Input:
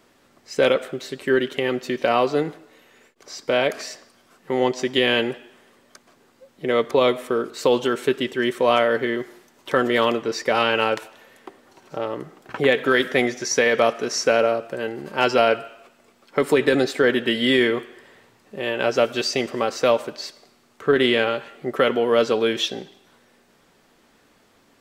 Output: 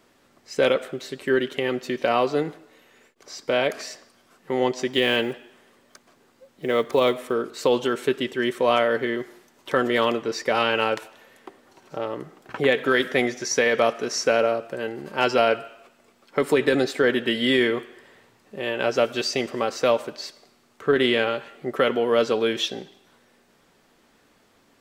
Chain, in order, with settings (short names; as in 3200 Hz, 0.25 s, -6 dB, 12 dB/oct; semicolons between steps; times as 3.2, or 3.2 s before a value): 4.93–7.34 block floating point 7-bit; gain -2 dB